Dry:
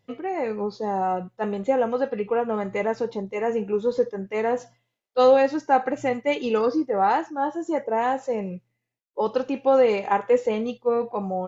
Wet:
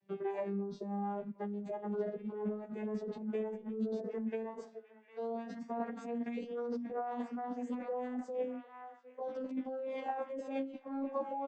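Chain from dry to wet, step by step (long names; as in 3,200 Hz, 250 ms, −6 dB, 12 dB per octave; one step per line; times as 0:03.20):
vocoder with a gliding carrier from G3, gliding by +6 semitones
on a send: feedback echo with a band-pass in the loop 753 ms, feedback 57%, band-pass 2,300 Hz, level −17 dB
on the sum: brickwall limiter −17.5 dBFS, peak gain reduction 10 dB
compressor whose output falls as the input rises −31 dBFS, ratio −1
barber-pole flanger 11.9 ms −2 Hz
level −4 dB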